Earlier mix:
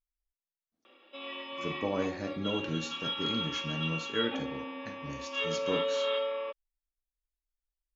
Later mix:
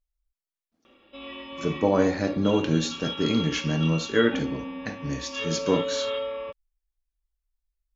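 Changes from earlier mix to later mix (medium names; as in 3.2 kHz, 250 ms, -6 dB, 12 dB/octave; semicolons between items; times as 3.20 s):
speech +11.0 dB; background: remove Bessel high-pass 410 Hz, order 8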